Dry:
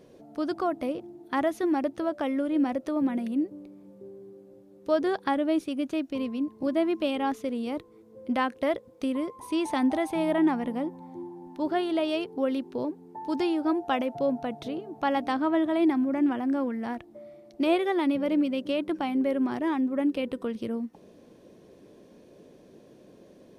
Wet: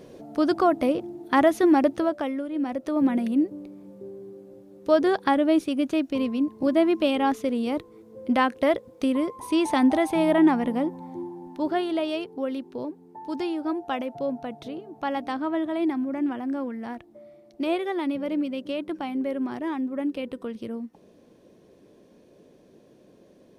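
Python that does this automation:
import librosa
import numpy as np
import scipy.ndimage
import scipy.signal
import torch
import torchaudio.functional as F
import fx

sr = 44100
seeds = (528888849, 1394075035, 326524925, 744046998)

y = fx.gain(x, sr, db=fx.line((1.93, 7.5), (2.49, -4.5), (3.06, 5.0), (11.13, 5.0), (12.44, -2.0)))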